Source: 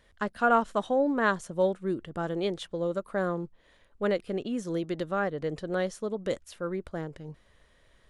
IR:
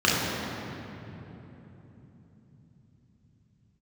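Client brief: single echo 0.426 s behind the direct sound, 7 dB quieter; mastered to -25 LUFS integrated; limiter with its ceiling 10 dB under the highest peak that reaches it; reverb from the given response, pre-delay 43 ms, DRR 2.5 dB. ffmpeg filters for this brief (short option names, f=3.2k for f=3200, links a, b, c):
-filter_complex "[0:a]alimiter=limit=-21.5dB:level=0:latency=1,aecho=1:1:426:0.447,asplit=2[a][b];[1:a]atrim=start_sample=2205,adelay=43[c];[b][c]afir=irnorm=-1:irlink=0,volume=-21.5dB[d];[a][d]amix=inputs=2:normalize=0,volume=3.5dB"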